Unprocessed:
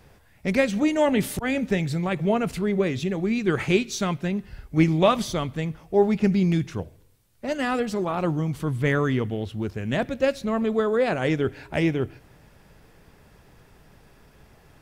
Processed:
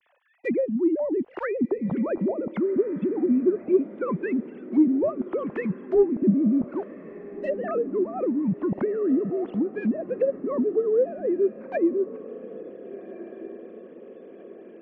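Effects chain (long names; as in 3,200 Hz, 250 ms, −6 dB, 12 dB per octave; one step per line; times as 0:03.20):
three sine waves on the formant tracks
in parallel at +1.5 dB: downward compressor 6 to 1, threshold −27 dBFS, peak gain reduction 17.5 dB
on the sum: leveller curve on the samples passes 1
treble cut that deepens with the level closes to 400 Hz, closed at −15.5 dBFS
on a send: feedback delay with all-pass diffusion 1,527 ms, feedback 53%, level −15.5 dB
on the sum: level −4.5 dB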